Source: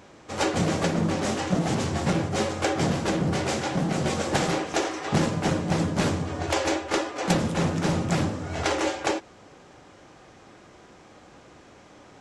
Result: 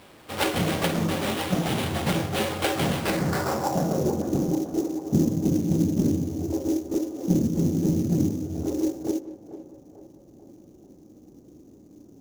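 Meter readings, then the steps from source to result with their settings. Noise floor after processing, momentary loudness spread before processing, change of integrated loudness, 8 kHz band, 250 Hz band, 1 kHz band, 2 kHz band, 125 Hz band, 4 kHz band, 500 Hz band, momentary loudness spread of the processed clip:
−52 dBFS, 3 LU, +0.5 dB, −3.0 dB, +3.0 dB, −3.0 dB, −3.0 dB, +0.5 dB, −1.5 dB, −1.0 dB, 6 LU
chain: low-pass filter sweep 3,600 Hz → 300 Hz, 0:02.92–0:04.26
sample-rate reduction 6,400 Hz, jitter 20%
feedback echo with a band-pass in the loop 442 ms, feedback 58%, band-pass 700 Hz, level −11 dB
level −1 dB

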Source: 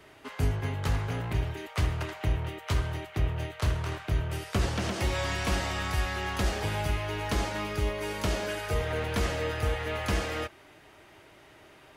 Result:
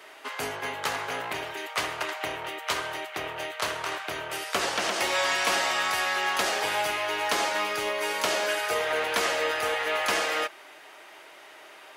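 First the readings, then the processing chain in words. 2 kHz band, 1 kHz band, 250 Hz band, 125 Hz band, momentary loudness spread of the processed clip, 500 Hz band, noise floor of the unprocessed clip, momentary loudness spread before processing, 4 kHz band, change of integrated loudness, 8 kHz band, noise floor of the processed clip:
+8.0 dB, +7.5 dB, −5.5 dB, −21.0 dB, 11 LU, +4.0 dB, −55 dBFS, 3 LU, +8.0 dB, +3.5 dB, +8.0 dB, −49 dBFS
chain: high-pass filter 580 Hz 12 dB per octave
level +8 dB

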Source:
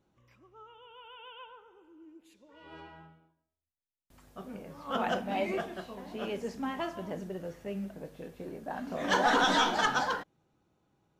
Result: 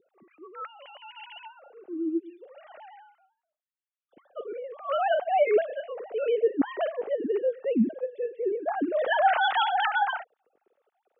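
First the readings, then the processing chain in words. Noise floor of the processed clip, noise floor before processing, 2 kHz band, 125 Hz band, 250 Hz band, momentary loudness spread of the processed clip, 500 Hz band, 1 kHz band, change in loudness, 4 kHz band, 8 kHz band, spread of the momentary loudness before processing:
below −85 dBFS, below −85 dBFS, +2.5 dB, can't be measured, +5.5 dB, 20 LU, +9.5 dB, +5.0 dB, +4.5 dB, −1.0 dB, below −35 dB, 23 LU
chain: three sine waves on the formant tracks
parametric band 230 Hz +14.5 dB 2.9 octaves
notch filter 1,000 Hz, Q 7.5
in parallel at +0.5 dB: brickwall limiter −21.5 dBFS, peak gain reduction 12 dB
on the sum: level −4.5 dB

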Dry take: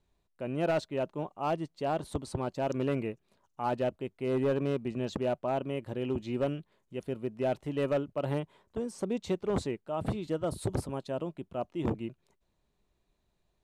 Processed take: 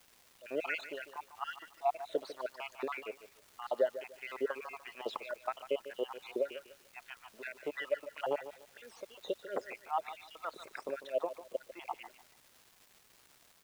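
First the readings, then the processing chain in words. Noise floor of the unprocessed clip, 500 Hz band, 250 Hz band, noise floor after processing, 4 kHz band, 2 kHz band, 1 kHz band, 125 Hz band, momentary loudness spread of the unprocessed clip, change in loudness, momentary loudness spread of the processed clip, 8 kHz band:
−76 dBFS, −5.5 dB, −16.5 dB, −65 dBFS, −2.0 dB, +1.5 dB, −3.0 dB, below −30 dB, 8 LU, −6.0 dB, 14 LU, −7.5 dB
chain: time-frequency cells dropped at random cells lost 57%
low-pass filter 3,700 Hz
low-shelf EQ 190 Hz −10.5 dB
downward compressor, threshold −33 dBFS, peak gain reduction 6.5 dB
auto-filter high-pass sine 3.1 Hz 470–2,000 Hz
surface crackle 580 per second −53 dBFS
background noise white −73 dBFS
on a send: repeating echo 148 ms, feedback 25%, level −13.5 dB
on the sum: level +3 dB

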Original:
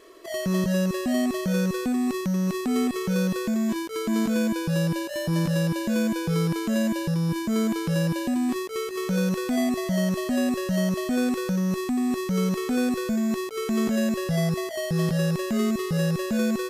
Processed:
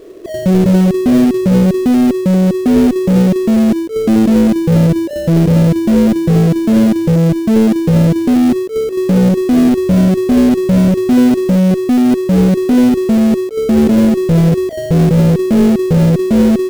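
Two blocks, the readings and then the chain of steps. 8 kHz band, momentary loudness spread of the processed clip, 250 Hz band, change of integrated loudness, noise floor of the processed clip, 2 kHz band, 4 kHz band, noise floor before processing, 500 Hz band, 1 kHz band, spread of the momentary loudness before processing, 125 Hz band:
+4.5 dB, 3 LU, +15.0 dB, +14.5 dB, −21 dBFS, +4.5 dB, +5.5 dB, −32 dBFS, +13.5 dB, +9.0 dB, 3 LU, +15.0 dB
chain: each half-wave held at its own peak
low shelf with overshoot 680 Hz +10.5 dB, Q 1.5
level −1 dB

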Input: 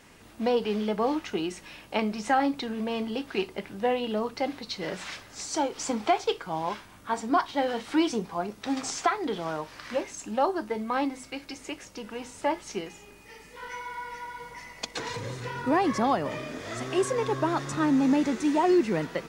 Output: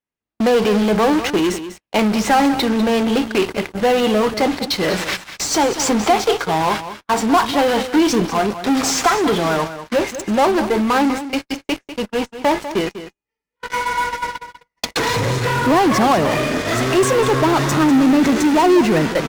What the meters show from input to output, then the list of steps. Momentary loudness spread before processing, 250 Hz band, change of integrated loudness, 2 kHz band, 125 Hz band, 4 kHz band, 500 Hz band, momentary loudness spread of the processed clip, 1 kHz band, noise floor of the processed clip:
14 LU, +11.5 dB, +11.5 dB, +13.5 dB, +14.5 dB, +14.0 dB, +11.5 dB, 10 LU, +11.0 dB, −84 dBFS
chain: noise gate −38 dBFS, range −42 dB
high-shelf EQ 7,800 Hz −7 dB
in parallel at −9.5 dB: fuzz pedal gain 39 dB, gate −47 dBFS
on the sum: single-tap delay 197 ms −12 dB
level +4.5 dB

